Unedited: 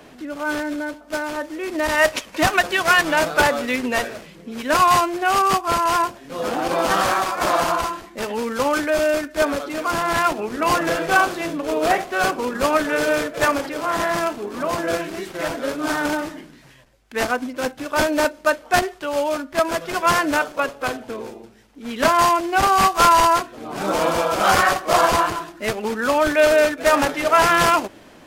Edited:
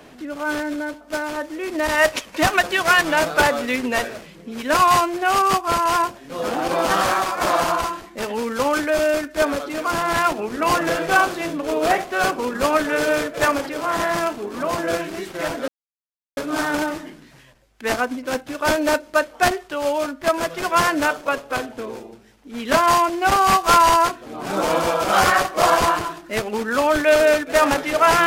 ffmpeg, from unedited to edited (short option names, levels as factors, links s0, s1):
-filter_complex "[0:a]asplit=2[s0][s1];[s0]atrim=end=15.68,asetpts=PTS-STARTPTS,afade=t=out:st=15.676:d=0.004:c=hsin,apad=pad_dur=0.69[s2];[s1]atrim=start=15.68,asetpts=PTS-STARTPTS,afade=t=in:d=0.004:c=hsin[s3];[s2][s3]concat=n=2:v=0:a=1"